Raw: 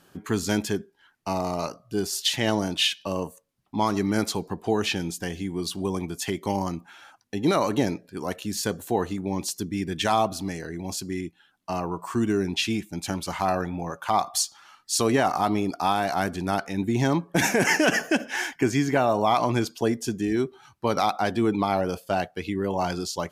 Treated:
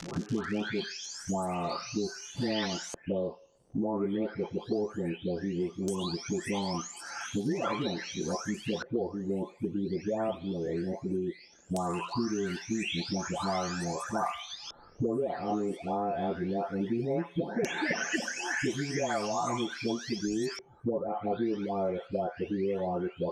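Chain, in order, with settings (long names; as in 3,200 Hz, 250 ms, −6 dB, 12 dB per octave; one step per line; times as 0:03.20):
every frequency bin delayed by itself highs late, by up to 780 ms
delay with a high-pass on its return 89 ms, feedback 42%, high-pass 1,600 Hz, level −16.5 dB
surface crackle 160 per second −48 dBFS
auto-filter low-pass square 0.17 Hz 510–6,100 Hz
multiband upward and downward compressor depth 100%
level −6.5 dB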